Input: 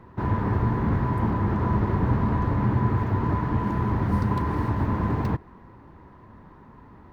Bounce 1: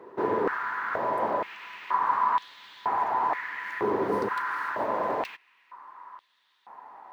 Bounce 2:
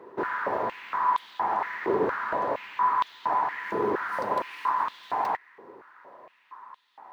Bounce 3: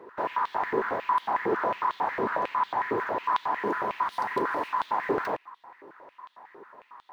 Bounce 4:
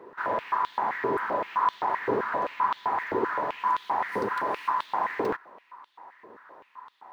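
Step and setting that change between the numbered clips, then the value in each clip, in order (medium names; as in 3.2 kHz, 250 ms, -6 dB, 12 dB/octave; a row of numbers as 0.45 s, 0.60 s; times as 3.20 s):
step-sequenced high-pass, rate: 2.1 Hz, 4.3 Hz, 11 Hz, 7.7 Hz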